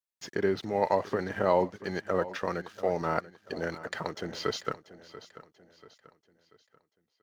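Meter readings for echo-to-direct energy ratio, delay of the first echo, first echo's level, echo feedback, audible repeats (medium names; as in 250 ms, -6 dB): -15.0 dB, 687 ms, -16.0 dB, 41%, 3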